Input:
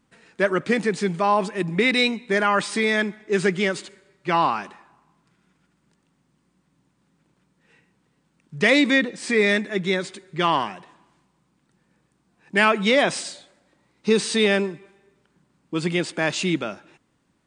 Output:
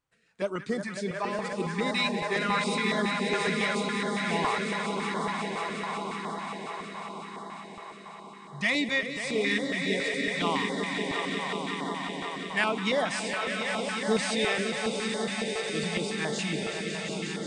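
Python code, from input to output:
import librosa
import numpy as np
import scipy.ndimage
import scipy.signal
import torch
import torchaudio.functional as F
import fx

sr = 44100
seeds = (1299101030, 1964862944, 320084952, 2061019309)

y = fx.peak_eq(x, sr, hz=310.0, db=-4.0, octaves=0.72)
y = fx.echo_diffused(y, sr, ms=790, feedback_pct=65, wet_db=-9)
y = fx.noise_reduce_blind(y, sr, reduce_db=7)
y = fx.echo_swell(y, sr, ms=181, loudest=5, wet_db=-8.5)
y = fx.filter_held_notch(y, sr, hz=7.2, low_hz=220.0, high_hz=2500.0)
y = y * librosa.db_to_amplitude(-7.0)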